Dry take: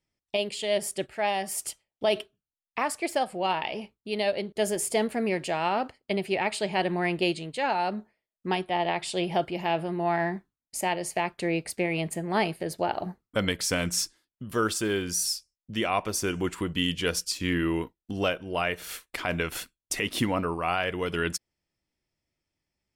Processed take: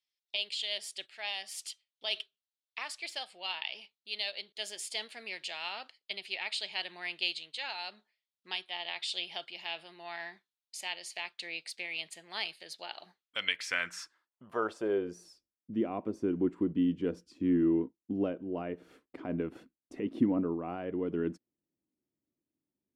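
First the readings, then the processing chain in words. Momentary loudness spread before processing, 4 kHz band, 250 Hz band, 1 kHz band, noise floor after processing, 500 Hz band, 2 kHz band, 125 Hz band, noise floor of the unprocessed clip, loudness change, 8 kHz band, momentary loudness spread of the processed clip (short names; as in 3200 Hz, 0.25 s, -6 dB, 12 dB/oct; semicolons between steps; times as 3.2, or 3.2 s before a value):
7 LU, -3.0 dB, -3.0 dB, -15.0 dB, under -85 dBFS, -9.5 dB, -7.0 dB, -10.5 dB, under -85 dBFS, -6.5 dB, -14.5 dB, 13 LU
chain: band-pass sweep 3800 Hz -> 280 Hz, 13.12–15.51; gain +3.5 dB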